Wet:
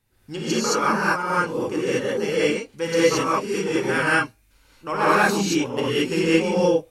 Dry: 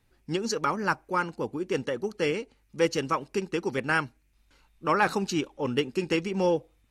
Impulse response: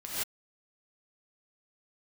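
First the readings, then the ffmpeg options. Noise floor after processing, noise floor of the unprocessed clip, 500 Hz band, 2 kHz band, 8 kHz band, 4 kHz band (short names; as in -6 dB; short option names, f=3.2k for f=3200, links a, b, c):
-60 dBFS, -67 dBFS, +7.0 dB, +8.0 dB, +10.5 dB, +8.0 dB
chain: -filter_complex "[0:a]highshelf=f=8.2k:g=10[a];[1:a]atrim=start_sample=2205,asetrate=33516,aresample=44100[b];[a][b]afir=irnorm=-1:irlink=0"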